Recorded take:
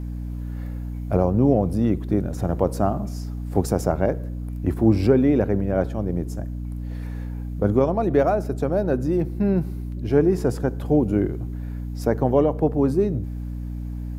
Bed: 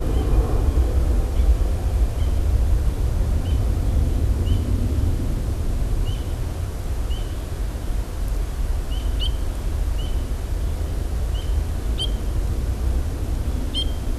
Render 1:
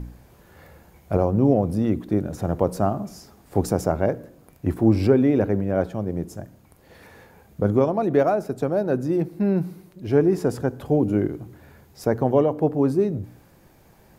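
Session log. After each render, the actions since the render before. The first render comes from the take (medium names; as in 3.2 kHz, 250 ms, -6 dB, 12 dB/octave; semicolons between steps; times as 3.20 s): de-hum 60 Hz, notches 5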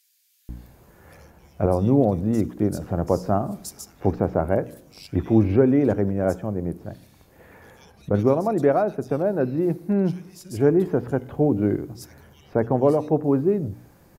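bands offset in time highs, lows 490 ms, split 2.9 kHz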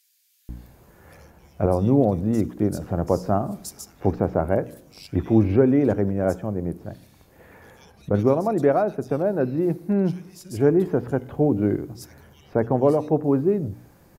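no audible change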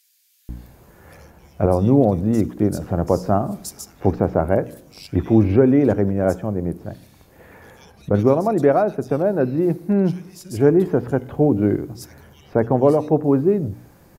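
trim +3.5 dB; peak limiter -3 dBFS, peak gain reduction 1.5 dB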